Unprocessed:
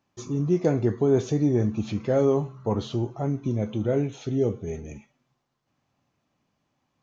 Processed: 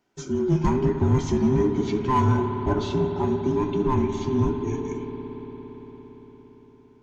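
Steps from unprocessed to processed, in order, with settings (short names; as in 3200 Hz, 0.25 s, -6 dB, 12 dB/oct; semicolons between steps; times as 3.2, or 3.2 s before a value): band inversion scrambler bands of 500 Hz; in parallel at -10 dB: wavefolder -21.5 dBFS; on the sum: reverb RT60 5.3 s, pre-delay 57 ms, DRR 5 dB; Vorbis 192 kbps 48000 Hz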